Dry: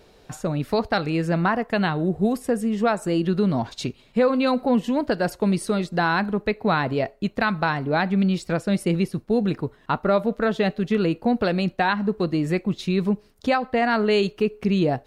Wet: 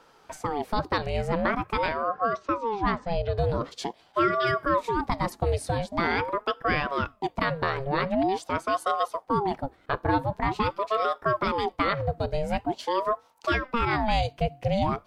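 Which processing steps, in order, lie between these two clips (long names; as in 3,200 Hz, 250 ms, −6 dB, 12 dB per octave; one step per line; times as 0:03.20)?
0:02.02–0:03.38: elliptic band-pass filter 110–4,700 Hz, stop band 40 dB
ring modulator whose carrier an LFO sweeps 590 Hz, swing 55%, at 0.45 Hz
level −1.5 dB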